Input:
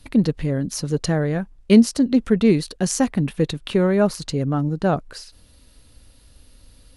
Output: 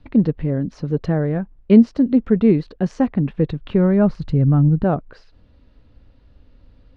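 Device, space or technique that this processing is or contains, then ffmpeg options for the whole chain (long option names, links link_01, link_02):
phone in a pocket: -filter_complex "[0:a]lowpass=7300,highshelf=frequency=5200:gain=-4,asettb=1/sr,asplit=3[link_01][link_02][link_03];[link_01]atrim=end=3.234[link_04];[link_02]atrim=start=3.23:end=4.84,asetpts=PTS-STARTPTS,afade=type=in:duration=0.004:curve=qsin,afade=type=out:start_time=1.606:duration=0.004:curve=qsin,asubboost=boost=7.5:cutoff=200[link_05];[link_03]atrim=start=4.836[link_06];[link_04][link_05]acrossfade=duration=0.004:curve1=hsin:curve2=qsin[link_07];[link_07][link_06]acrossfade=duration=0.004:curve1=qsin:curve2=hsin,lowpass=3500,equalizer=frequency=210:width_type=o:width=2.8:gain=2,highshelf=frequency=2200:gain=-10"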